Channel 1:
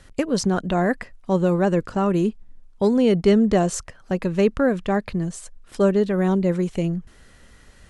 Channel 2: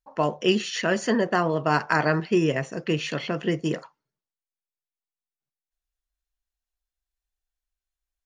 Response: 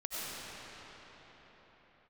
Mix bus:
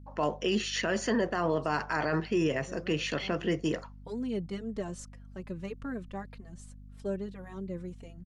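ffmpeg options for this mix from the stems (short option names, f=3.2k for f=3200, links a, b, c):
-filter_complex "[0:a]dynaudnorm=f=220:g=17:m=4dB,asplit=2[a][b];[b]adelay=3.7,afreqshift=-1.8[c];[a][c]amix=inputs=2:normalize=1,adelay=1250,volume=-17dB[d];[1:a]highpass=160,alimiter=limit=-17dB:level=0:latency=1:release=16,aeval=exprs='val(0)+0.00562*(sin(2*PI*50*n/s)+sin(2*PI*2*50*n/s)/2+sin(2*PI*3*50*n/s)/3+sin(2*PI*4*50*n/s)/4+sin(2*PI*5*50*n/s)/5)':c=same,volume=-2.5dB,asplit=2[e][f];[f]apad=whole_len=403671[g];[d][g]sidechaincompress=threshold=-44dB:ratio=8:attack=16:release=190[h];[h][e]amix=inputs=2:normalize=0"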